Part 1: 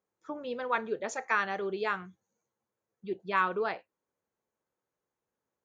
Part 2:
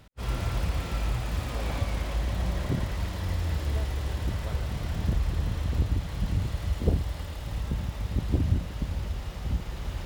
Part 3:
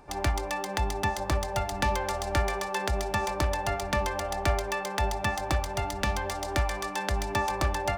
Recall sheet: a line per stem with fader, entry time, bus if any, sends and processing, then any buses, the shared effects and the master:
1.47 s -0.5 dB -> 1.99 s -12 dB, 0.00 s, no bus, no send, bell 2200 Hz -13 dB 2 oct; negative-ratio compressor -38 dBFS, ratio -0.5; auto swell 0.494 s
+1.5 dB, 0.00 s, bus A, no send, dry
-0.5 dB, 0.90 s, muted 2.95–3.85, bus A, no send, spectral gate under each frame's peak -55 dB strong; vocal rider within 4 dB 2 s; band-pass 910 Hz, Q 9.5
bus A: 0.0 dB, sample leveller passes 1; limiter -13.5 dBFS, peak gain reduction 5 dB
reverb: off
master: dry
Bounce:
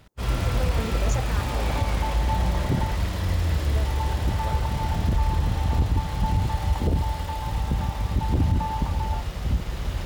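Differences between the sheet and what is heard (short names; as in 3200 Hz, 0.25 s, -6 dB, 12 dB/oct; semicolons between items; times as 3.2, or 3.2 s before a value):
stem 1 -0.5 dB -> +5.5 dB; stem 3: entry 0.90 s -> 1.25 s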